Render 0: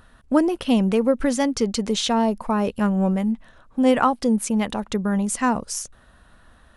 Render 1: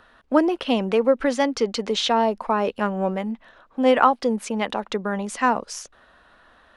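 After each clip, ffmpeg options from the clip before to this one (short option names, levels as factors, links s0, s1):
-filter_complex "[0:a]acrossover=split=300 5200:gain=0.178 1 0.158[s0][s1][s2];[s0][s1][s2]amix=inputs=3:normalize=0,volume=1.41"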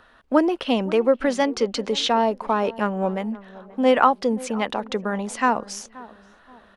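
-filter_complex "[0:a]asplit=2[s0][s1];[s1]adelay=528,lowpass=f=1100:p=1,volume=0.119,asplit=2[s2][s3];[s3]adelay=528,lowpass=f=1100:p=1,volume=0.43,asplit=2[s4][s5];[s5]adelay=528,lowpass=f=1100:p=1,volume=0.43[s6];[s0][s2][s4][s6]amix=inputs=4:normalize=0"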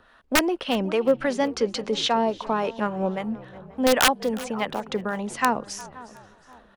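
-filter_complex "[0:a]aeval=exprs='(mod(2.37*val(0)+1,2)-1)/2.37':c=same,acrossover=split=590[s0][s1];[s0]aeval=exprs='val(0)*(1-0.5/2+0.5/2*cos(2*PI*3.6*n/s))':c=same[s2];[s1]aeval=exprs='val(0)*(1-0.5/2-0.5/2*cos(2*PI*3.6*n/s))':c=same[s3];[s2][s3]amix=inputs=2:normalize=0,asplit=4[s4][s5][s6][s7];[s5]adelay=361,afreqshift=-59,volume=0.1[s8];[s6]adelay=722,afreqshift=-118,volume=0.0389[s9];[s7]adelay=1083,afreqshift=-177,volume=0.0151[s10];[s4][s8][s9][s10]amix=inputs=4:normalize=0"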